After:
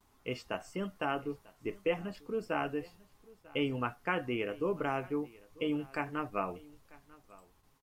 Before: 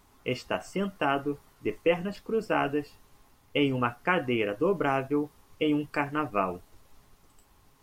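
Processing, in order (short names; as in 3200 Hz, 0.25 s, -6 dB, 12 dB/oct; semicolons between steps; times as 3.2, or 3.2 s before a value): gate with hold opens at -51 dBFS; echo 0.944 s -22.5 dB; gain -7 dB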